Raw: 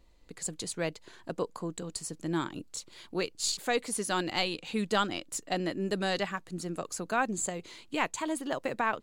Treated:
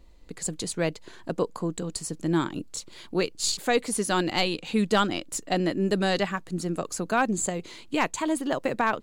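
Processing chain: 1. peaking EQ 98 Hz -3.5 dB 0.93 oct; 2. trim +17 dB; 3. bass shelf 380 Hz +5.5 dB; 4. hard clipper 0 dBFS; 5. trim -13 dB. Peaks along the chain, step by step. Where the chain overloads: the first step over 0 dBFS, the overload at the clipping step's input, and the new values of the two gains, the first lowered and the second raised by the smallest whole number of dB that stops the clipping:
-13.5 dBFS, +3.5 dBFS, +3.5 dBFS, 0.0 dBFS, -13.0 dBFS; step 2, 3.5 dB; step 2 +13 dB, step 5 -9 dB

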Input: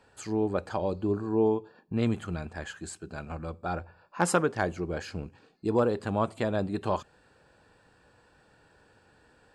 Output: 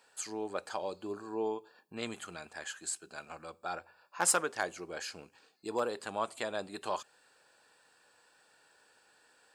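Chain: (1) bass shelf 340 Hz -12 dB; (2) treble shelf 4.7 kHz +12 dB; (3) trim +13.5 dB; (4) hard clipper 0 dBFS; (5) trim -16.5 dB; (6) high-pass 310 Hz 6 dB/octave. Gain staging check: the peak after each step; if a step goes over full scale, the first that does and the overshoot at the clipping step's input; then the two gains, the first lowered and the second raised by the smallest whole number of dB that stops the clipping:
-11.5 dBFS, -8.5 dBFS, +5.0 dBFS, 0.0 dBFS, -16.5 dBFS, -15.0 dBFS; step 3, 5.0 dB; step 3 +8.5 dB, step 5 -11.5 dB

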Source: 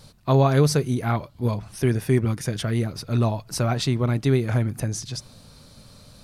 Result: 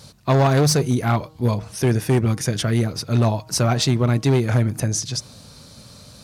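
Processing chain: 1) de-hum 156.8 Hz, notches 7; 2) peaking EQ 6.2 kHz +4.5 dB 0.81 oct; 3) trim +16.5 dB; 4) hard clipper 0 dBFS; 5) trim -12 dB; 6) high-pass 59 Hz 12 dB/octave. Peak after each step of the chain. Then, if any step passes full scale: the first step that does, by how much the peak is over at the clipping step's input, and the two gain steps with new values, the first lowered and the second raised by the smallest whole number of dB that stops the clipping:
-8.0 dBFS, -8.0 dBFS, +8.5 dBFS, 0.0 dBFS, -12.0 dBFS, -7.0 dBFS; step 3, 8.5 dB; step 3 +7.5 dB, step 5 -3 dB

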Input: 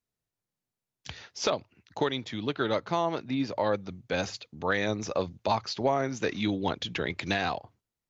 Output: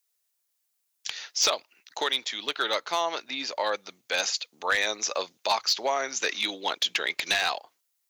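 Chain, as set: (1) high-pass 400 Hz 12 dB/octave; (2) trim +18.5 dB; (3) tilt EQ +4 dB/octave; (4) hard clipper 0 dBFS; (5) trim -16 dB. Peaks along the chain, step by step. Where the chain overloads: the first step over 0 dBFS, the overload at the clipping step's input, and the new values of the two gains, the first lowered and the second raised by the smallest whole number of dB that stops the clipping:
-12.5 dBFS, +6.0 dBFS, +9.0 dBFS, 0.0 dBFS, -16.0 dBFS; step 2, 9.0 dB; step 2 +9.5 dB, step 5 -7 dB

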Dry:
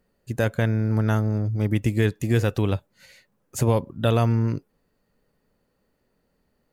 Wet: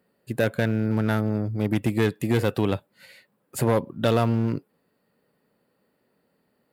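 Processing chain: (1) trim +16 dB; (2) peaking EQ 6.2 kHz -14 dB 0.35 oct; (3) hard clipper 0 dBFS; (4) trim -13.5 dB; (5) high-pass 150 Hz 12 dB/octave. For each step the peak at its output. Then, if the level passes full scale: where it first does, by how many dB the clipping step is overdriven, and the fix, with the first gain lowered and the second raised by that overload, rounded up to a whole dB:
+6.0 dBFS, +6.0 dBFS, 0.0 dBFS, -13.5 dBFS, -8.0 dBFS; step 1, 6.0 dB; step 1 +10 dB, step 4 -7.5 dB

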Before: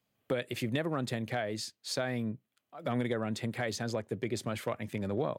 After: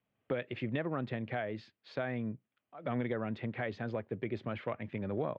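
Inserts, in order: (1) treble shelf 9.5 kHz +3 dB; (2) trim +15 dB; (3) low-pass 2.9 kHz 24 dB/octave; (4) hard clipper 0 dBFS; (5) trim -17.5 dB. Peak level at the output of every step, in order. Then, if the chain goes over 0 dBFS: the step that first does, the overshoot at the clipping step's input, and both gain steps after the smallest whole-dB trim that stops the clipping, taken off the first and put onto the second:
-18.5 dBFS, -3.5 dBFS, -3.5 dBFS, -3.5 dBFS, -21.0 dBFS; nothing clips

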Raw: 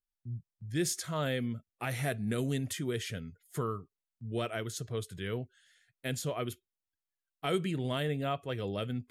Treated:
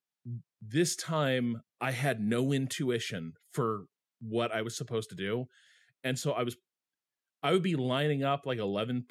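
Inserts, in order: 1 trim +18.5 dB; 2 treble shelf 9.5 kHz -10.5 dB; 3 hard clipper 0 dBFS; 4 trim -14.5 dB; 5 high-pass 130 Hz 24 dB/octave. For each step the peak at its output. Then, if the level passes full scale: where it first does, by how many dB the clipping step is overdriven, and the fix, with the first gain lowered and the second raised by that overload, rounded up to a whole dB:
-1.0 dBFS, -1.5 dBFS, -1.5 dBFS, -16.0 dBFS, -14.5 dBFS; nothing clips

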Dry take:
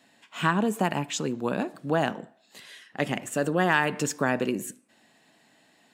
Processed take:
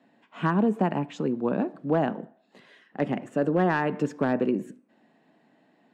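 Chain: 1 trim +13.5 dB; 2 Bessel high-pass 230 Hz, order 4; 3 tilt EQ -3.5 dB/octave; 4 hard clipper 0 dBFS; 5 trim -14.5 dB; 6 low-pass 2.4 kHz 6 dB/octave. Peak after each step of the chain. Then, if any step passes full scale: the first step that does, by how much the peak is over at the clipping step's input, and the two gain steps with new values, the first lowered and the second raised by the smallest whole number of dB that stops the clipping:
+5.5 dBFS, +5.5 dBFS, +3.5 dBFS, 0.0 dBFS, -14.5 dBFS, -14.5 dBFS; step 1, 3.5 dB; step 1 +9.5 dB, step 5 -10.5 dB

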